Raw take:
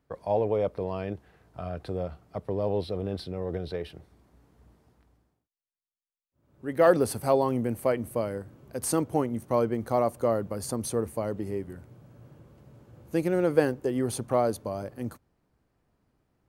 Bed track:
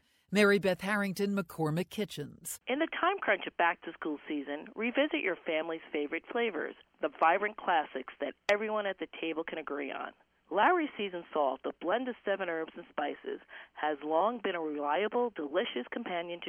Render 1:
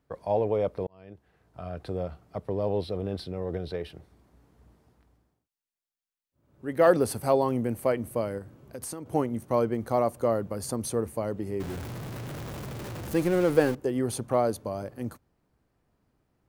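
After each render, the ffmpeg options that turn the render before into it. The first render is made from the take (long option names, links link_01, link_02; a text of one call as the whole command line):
ffmpeg -i in.wav -filter_complex "[0:a]asettb=1/sr,asplit=3[link_01][link_02][link_03];[link_01]atrim=end=8.384[link_04];[link_02]atrim=start=8.38:end=9.06,asetpts=PTS-STARTPTS,afade=type=in:duration=0.004:curve=qsin,afade=type=out:start_time=0.676:duration=0.004:curve=qsin,acompressor=threshold=-34dB:ratio=6:attack=3.2:release=140:knee=1:detection=peak[link_05];[link_03]atrim=start=9.056[link_06];[link_04][link_05]acrossfade=duration=0.004:curve1=hsin:curve2=qsin[link_07];[link_07][link_06]acrossfade=duration=0.004:curve1=qsin:curve2=hsin,asettb=1/sr,asplit=3[link_08][link_09][link_10];[link_08]atrim=end=11.604[link_11];[link_09]atrim=start=11.6:end=13.75,asetpts=PTS-STARTPTS,afade=type=in:duration=0.004:curve=qsin,afade=type=out:start_time=2.146:duration=0.004:curve=qsin,aeval=exprs='val(0)+0.5*0.0237*sgn(val(0))':channel_layout=same[link_12];[link_10]atrim=start=13.746[link_13];[link_11][link_12]acrossfade=duration=0.004:curve1=hsin:curve2=qsin[link_14];[link_14][link_13]acrossfade=duration=0.004:curve1=qsin:curve2=hsin,asplit=2[link_15][link_16];[link_15]atrim=end=0.87,asetpts=PTS-STARTPTS,afade=type=out:start_time=0.866:duration=0.004:curve=hsin[link_17];[link_16]atrim=start=0.87,asetpts=PTS-STARTPTS,afade=type=in:duration=1.03[link_18];[link_17][link_18]concat=n=2:v=0:a=1" out.wav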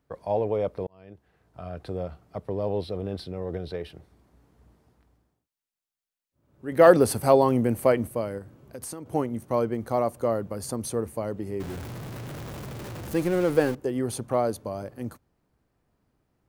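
ffmpeg -i in.wav -filter_complex "[0:a]asplit=3[link_01][link_02][link_03];[link_01]atrim=end=6.722[link_04];[link_02]atrim=start=6.718:end=8.072,asetpts=PTS-STARTPTS,volume=5dB[link_05];[link_03]atrim=start=8.068[link_06];[link_04][link_05]acrossfade=duration=0.004:curve1=hsin:curve2=hsin[link_07];[link_07][link_06]acrossfade=duration=0.004:curve1=hsin:curve2=hsin" out.wav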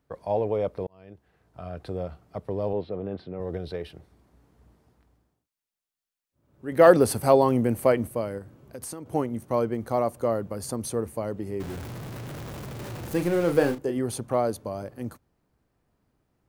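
ffmpeg -i in.wav -filter_complex "[0:a]asettb=1/sr,asplit=3[link_01][link_02][link_03];[link_01]atrim=end=2.734[link_04];[link_02]atrim=start=2.73:end=3.4,asetpts=PTS-STARTPTS,afade=type=in:duration=0.004:curve=qsin,afade=type=out:start_time=0.666:duration=0.004:curve=qsin,highpass=120,lowpass=2100[link_05];[link_03]atrim=start=3.396[link_06];[link_04][link_05]acrossfade=duration=0.004:curve1=hsin:curve2=qsin[link_07];[link_07][link_06]acrossfade=duration=0.004:curve1=qsin:curve2=hsin,asettb=1/sr,asplit=3[link_08][link_09][link_10];[link_08]atrim=end=12.764[link_11];[link_09]atrim=start=12.76:end=13.98,asetpts=PTS-STARTPTS,afade=type=in:duration=0.004:curve=qsin,afade=type=out:start_time=1.216:duration=0.004:curve=qsin,asplit=2[link_12][link_13];[link_13]adelay=35,volume=-8dB[link_14];[link_12][link_14]amix=inputs=2:normalize=0,atrim=end_sample=53802[link_15];[link_10]atrim=start=13.976[link_16];[link_11][link_15]acrossfade=duration=0.004:curve1=hsin:curve2=qsin[link_17];[link_17][link_16]acrossfade=duration=0.004:curve1=qsin:curve2=hsin" out.wav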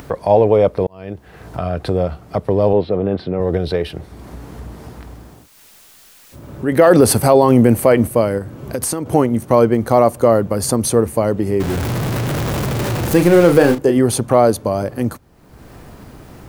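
ffmpeg -i in.wav -filter_complex "[0:a]asplit=2[link_01][link_02];[link_02]acompressor=mode=upward:threshold=-27dB:ratio=2.5,volume=2dB[link_03];[link_01][link_03]amix=inputs=2:normalize=0,alimiter=level_in=7dB:limit=-1dB:release=50:level=0:latency=1" out.wav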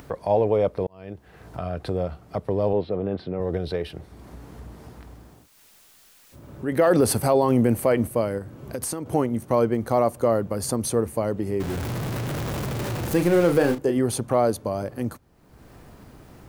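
ffmpeg -i in.wav -af "volume=-8.5dB" out.wav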